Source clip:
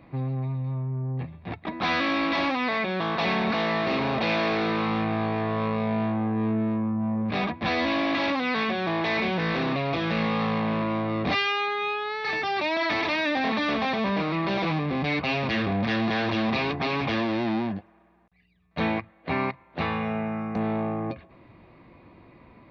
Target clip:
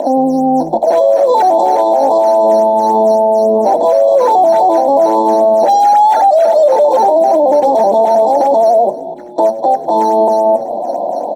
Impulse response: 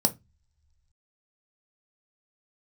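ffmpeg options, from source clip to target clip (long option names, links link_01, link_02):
-filter_complex "[0:a]asuperstop=centerf=1000:order=20:qfactor=0.9,lowshelf=frequency=520:width_type=q:width=1.5:gain=13.5,aecho=1:1:2.4:0.85,acompressor=mode=upward:threshold=-27dB:ratio=2.5,acrusher=samples=10:mix=1:aa=0.000001:lfo=1:lforange=16:lforate=1.8,acompressor=threshold=-20dB:ratio=6,highpass=frequency=200:width=0.5412,highpass=frequency=200:width=1.3066,tiltshelf=frequency=1300:gain=10,asetrate=88200,aresample=44100,asplit=5[link_01][link_02][link_03][link_04][link_05];[link_02]adelay=100,afreqshift=-100,volume=-20dB[link_06];[link_03]adelay=200,afreqshift=-200,volume=-26.2dB[link_07];[link_04]adelay=300,afreqshift=-300,volume=-32.4dB[link_08];[link_05]adelay=400,afreqshift=-400,volume=-38.6dB[link_09];[link_01][link_06][link_07][link_08][link_09]amix=inputs=5:normalize=0,asplit=2[link_10][link_11];[1:a]atrim=start_sample=2205,atrim=end_sample=6615[link_12];[link_11][link_12]afir=irnorm=-1:irlink=0,volume=-10dB[link_13];[link_10][link_13]amix=inputs=2:normalize=0,alimiter=level_in=4.5dB:limit=-1dB:release=50:level=0:latency=1,volume=-2dB"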